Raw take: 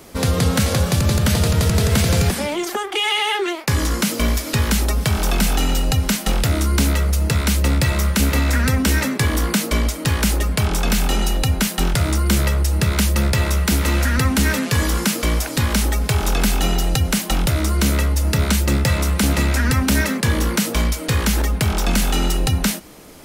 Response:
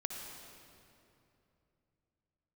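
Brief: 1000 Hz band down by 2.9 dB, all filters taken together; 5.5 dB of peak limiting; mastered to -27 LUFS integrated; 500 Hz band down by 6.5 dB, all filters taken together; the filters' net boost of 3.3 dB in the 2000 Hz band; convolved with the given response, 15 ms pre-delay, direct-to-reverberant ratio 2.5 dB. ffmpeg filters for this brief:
-filter_complex "[0:a]equalizer=f=500:t=o:g=-8,equalizer=f=1k:t=o:g=-3.5,equalizer=f=2k:t=o:g=5.5,alimiter=limit=-10.5dB:level=0:latency=1,asplit=2[a][b];[1:a]atrim=start_sample=2205,adelay=15[c];[b][c]afir=irnorm=-1:irlink=0,volume=-3dB[d];[a][d]amix=inputs=2:normalize=0,volume=-9.5dB"

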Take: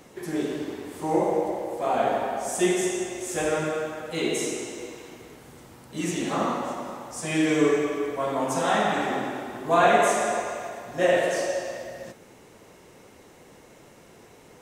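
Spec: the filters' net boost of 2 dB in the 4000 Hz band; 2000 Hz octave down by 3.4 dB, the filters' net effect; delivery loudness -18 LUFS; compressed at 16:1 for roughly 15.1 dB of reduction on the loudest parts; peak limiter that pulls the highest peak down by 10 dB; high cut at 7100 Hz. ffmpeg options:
-af "lowpass=7.1k,equalizer=f=2k:t=o:g=-5.5,equalizer=f=4k:t=o:g=5,acompressor=threshold=-30dB:ratio=16,volume=21dB,alimiter=limit=-9.5dB:level=0:latency=1"

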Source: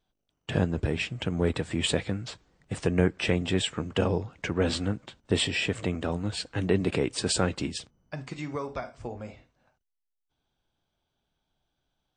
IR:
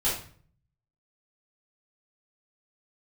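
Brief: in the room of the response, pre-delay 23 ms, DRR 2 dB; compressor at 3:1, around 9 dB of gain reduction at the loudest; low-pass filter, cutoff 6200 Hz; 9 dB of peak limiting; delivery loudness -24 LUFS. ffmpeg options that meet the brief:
-filter_complex "[0:a]lowpass=6.2k,acompressor=threshold=-32dB:ratio=3,alimiter=level_in=3dB:limit=-24dB:level=0:latency=1,volume=-3dB,asplit=2[a][b];[1:a]atrim=start_sample=2205,adelay=23[c];[b][c]afir=irnorm=-1:irlink=0,volume=-11.5dB[d];[a][d]amix=inputs=2:normalize=0,volume=12dB"

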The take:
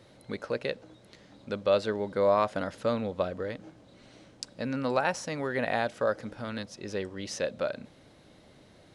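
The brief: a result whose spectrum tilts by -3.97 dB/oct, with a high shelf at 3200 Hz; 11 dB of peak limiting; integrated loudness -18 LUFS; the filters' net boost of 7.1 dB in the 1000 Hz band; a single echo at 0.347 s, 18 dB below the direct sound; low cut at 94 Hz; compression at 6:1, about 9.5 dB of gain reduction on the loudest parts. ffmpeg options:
-af "highpass=94,equalizer=f=1k:t=o:g=8.5,highshelf=f=3.2k:g=6,acompressor=threshold=-25dB:ratio=6,alimiter=limit=-20dB:level=0:latency=1,aecho=1:1:347:0.126,volume=16dB"

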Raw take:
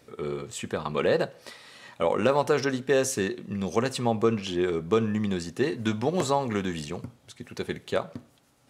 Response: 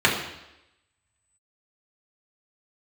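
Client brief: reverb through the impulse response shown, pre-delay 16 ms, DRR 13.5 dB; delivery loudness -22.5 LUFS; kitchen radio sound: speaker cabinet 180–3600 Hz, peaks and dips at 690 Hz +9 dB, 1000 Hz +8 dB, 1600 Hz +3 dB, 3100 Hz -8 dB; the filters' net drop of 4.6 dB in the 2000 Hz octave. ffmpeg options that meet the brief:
-filter_complex "[0:a]equalizer=f=2k:t=o:g=-9,asplit=2[a][b];[1:a]atrim=start_sample=2205,adelay=16[c];[b][c]afir=irnorm=-1:irlink=0,volume=-33dB[d];[a][d]amix=inputs=2:normalize=0,highpass=180,equalizer=f=690:t=q:w=4:g=9,equalizer=f=1k:t=q:w=4:g=8,equalizer=f=1.6k:t=q:w=4:g=3,equalizer=f=3.1k:t=q:w=4:g=-8,lowpass=f=3.6k:w=0.5412,lowpass=f=3.6k:w=1.3066,volume=4dB"

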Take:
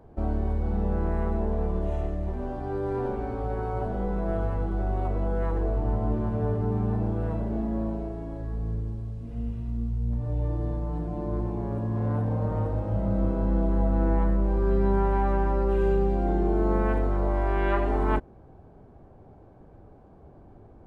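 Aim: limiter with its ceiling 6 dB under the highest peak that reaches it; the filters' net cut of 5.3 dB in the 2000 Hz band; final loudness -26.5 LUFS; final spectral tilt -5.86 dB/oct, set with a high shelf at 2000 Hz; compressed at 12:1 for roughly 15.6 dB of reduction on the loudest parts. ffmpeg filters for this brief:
-af "highshelf=f=2k:g=-5.5,equalizer=f=2k:t=o:g=-4.5,acompressor=threshold=-35dB:ratio=12,volume=15.5dB,alimiter=limit=-17dB:level=0:latency=1"

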